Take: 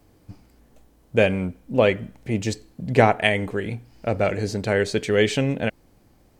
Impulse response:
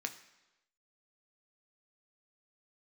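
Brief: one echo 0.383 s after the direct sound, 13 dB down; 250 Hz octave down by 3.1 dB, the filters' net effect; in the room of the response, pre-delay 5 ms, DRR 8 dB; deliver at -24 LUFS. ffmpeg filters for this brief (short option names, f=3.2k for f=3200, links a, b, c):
-filter_complex "[0:a]equalizer=f=250:t=o:g=-4,aecho=1:1:383:0.224,asplit=2[a][b];[1:a]atrim=start_sample=2205,adelay=5[c];[b][c]afir=irnorm=-1:irlink=0,volume=-8.5dB[d];[a][d]amix=inputs=2:normalize=0,volume=-1dB"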